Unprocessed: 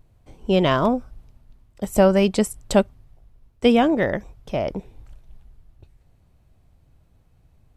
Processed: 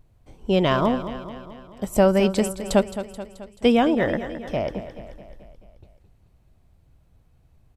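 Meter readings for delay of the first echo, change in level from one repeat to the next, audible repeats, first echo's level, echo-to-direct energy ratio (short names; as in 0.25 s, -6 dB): 0.216 s, -5.0 dB, 5, -12.0 dB, -10.5 dB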